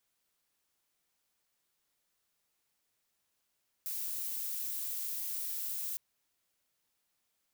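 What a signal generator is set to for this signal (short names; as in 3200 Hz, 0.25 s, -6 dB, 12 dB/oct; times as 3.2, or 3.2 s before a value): noise violet, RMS -37.5 dBFS 2.11 s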